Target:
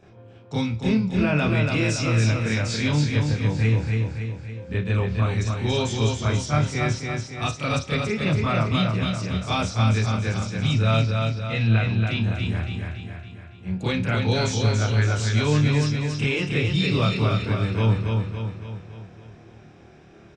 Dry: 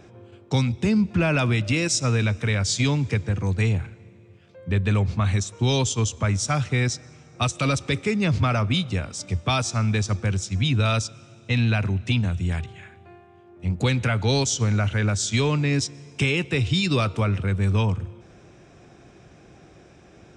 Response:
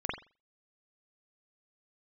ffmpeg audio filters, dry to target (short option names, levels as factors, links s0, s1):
-filter_complex "[0:a]asettb=1/sr,asplit=3[s0][s1][s2];[s0]atrim=end=10.994[s3];[s1]atrim=start=10.99:end=11.93,asetpts=PTS-STARTPTS,afade=t=in:d=0.004:c=qsin,afade=t=out:st=0.936:d=0.004:c=qsin,lowpass=f=4500:w=0.5412,lowpass=f=4500:w=1.3066[s4];[s2]atrim=start=11.926[s5];[s3][s4]acrossfade=d=0.004:c1=hsin:c2=qsin[s6];[s6][s5]acrossfade=d=0.004:c1=qsin:c2=hsin,aecho=1:1:281|562|843|1124|1405|1686|1967:0.631|0.328|0.171|0.0887|0.0461|0.024|0.0125[s7];[1:a]atrim=start_sample=2205,asetrate=70560,aresample=44100[s8];[s7][s8]afir=irnorm=-1:irlink=0,volume=0.668"